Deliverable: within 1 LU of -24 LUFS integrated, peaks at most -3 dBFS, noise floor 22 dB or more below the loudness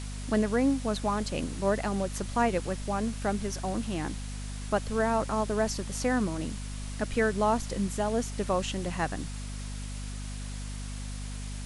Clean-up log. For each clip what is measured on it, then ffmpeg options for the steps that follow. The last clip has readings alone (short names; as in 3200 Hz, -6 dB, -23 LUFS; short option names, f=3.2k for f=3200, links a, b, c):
hum 50 Hz; harmonics up to 250 Hz; hum level -35 dBFS; noise floor -37 dBFS; noise floor target -53 dBFS; loudness -31.0 LUFS; peak -12.5 dBFS; loudness target -24.0 LUFS
-> -af "bandreject=f=50:t=h:w=6,bandreject=f=100:t=h:w=6,bandreject=f=150:t=h:w=6,bandreject=f=200:t=h:w=6,bandreject=f=250:t=h:w=6"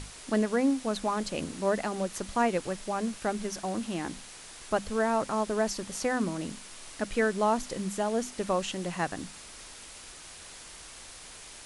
hum none; noise floor -47 dBFS; noise floor target -53 dBFS
-> -af "afftdn=nr=6:nf=-47"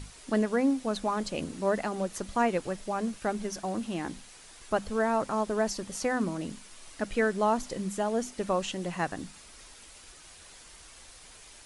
noise floor -52 dBFS; noise floor target -53 dBFS
-> -af "afftdn=nr=6:nf=-52"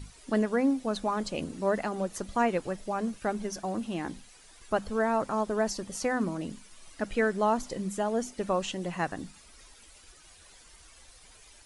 noise floor -55 dBFS; loudness -30.5 LUFS; peak -14.0 dBFS; loudness target -24.0 LUFS
-> -af "volume=6.5dB"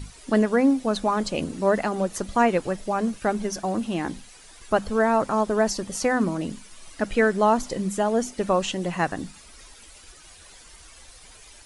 loudness -24.0 LUFS; peak -7.5 dBFS; noise floor -49 dBFS